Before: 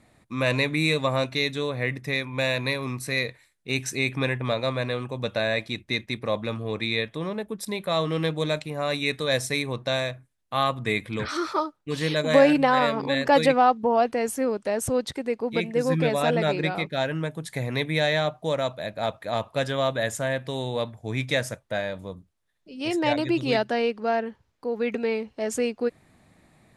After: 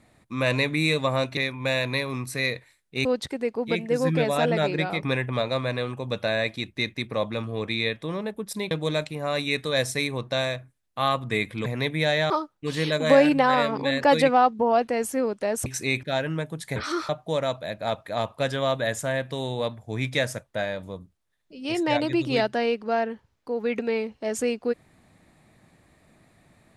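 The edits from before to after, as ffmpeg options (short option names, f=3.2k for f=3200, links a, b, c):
-filter_complex "[0:a]asplit=11[a][b][c][d][e][f][g][h][i][j][k];[a]atrim=end=1.372[l];[b]atrim=start=2.098:end=3.782[m];[c]atrim=start=14.898:end=16.882[n];[d]atrim=start=4.148:end=7.832[o];[e]atrim=start=8.258:end=11.212[p];[f]atrim=start=17.608:end=18.252[q];[g]atrim=start=11.538:end=14.902[r];[h]atrim=start=3.778:end=4.152[s];[i]atrim=start=16.878:end=17.612[t];[j]atrim=start=11.208:end=11.542[u];[k]atrim=start=18.248[v];[l][m]acrossfade=d=0.004:c1=hsin:c2=hsin[w];[w][n]acrossfade=d=0.004:c1=hsin:c2=hsin[x];[x][o]acrossfade=d=0.004:c1=hsin:c2=hsin[y];[y][p]acrossfade=d=0.004:c1=hsin:c2=hsin[z];[z][q]acrossfade=d=0.004:c1=hsin:c2=hsin[aa];[aa][r]acrossfade=d=0.004:c1=hsin:c2=hsin[ab];[ab][s]acrossfade=d=0.004:c1=hsin:c2=hsin[ac];[ac][t]acrossfade=d=0.004:c1=hsin:c2=hsin[ad];[ad][u]acrossfade=d=0.004:c1=hsin:c2=hsin[ae];[ae][v]acrossfade=d=0.004:c1=hsin:c2=hsin"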